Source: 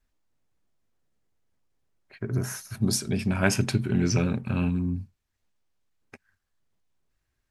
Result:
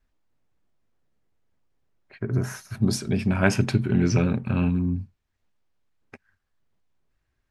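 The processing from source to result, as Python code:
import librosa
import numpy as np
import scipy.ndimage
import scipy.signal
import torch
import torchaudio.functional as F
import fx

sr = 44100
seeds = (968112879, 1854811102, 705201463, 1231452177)

y = fx.high_shelf(x, sr, hz=5400.0, db=-11.5)
y = F.gain(torch.from_numpy(y), 3.0).numpy()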